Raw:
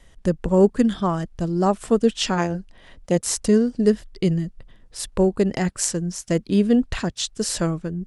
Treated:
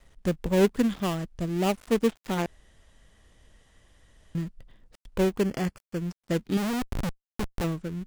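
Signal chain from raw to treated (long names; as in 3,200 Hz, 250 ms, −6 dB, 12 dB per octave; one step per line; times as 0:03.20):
gap after every zero crossing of 0.25 ms
0:02.46–0:04.35: fill with room tone
0:05.41–0:06.00: Butterworth band-reject 3,800 Hz, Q 6.3
0:06.57–0:07.64: comparator with hysteresis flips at −29 dBFS
level −5.5 dB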